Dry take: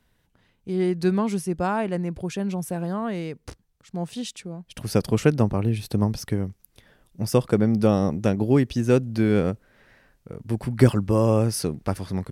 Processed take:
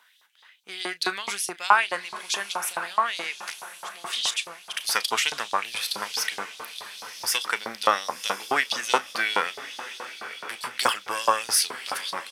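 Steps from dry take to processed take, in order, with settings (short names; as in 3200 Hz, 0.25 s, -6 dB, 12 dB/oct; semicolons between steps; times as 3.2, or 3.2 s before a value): one diode to ground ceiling -12.5 dBFS; bell 3400 Hz +5 dB 0.22 oct; doubler 35 ms -14 dB; on a send: diffused feedback echo 1.037 s, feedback 44%, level -12 dB; on the sum: LFO high-pass saw up 4.7 Hz 940–4600 Hz; gain +8.5 dB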